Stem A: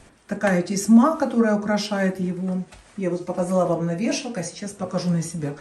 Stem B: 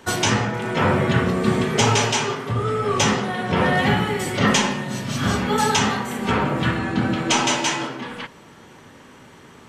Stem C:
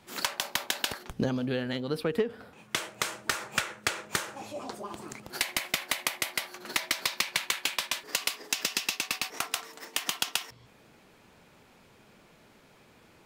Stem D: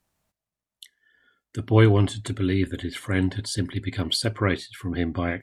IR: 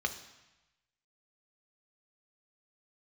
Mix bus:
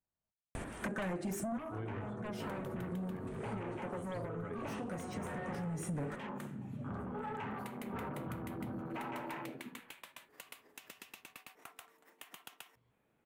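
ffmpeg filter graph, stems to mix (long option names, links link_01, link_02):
-filter_complex "[0:a]acompressor=threshold=-32dB:ratio=3,aeval=exprs='0.15*sin(PI/2*3.98*val(0)/0.15)':channel_layout=same,adelay=550,volume=-3dB[link_01];[1:a]afwtdn=0.0708,bass=frequency=250:gain=-1,treble=frequency=4000:gain=-15,asoftclip=type=tanh:threshold=-17dB,adelay=1650,volume=-13.5dB[link_02];[2:a]adelay=2250,volume=-18dB[link_03];[3:a]lowpass=frequency=2400:poles=1,volume=-19dB,asplit=2[link_04][link_05];[link_05]apad=whole_len=271588[link_06];[link_01][link_06]sidechaincompress=threshold=-52dB:ratio=8:attack=16:release=678[link_07];[link_07][link_02][link_03][link_04]amix=inputs=4:normalize=0,equalizer=frequency=5100:width_type=o:width=1.1:gain=-14,acompressor=threshold=-39dB:ratio=4"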